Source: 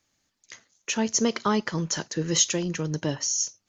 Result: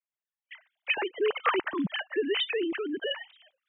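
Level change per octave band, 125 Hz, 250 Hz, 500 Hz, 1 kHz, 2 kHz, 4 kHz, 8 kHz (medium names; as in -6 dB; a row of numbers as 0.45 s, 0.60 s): -16.5 dB, -6.5 dB, +1.0 dB, -0.5 dB, +4.0 dB, -2.5 dB, no reading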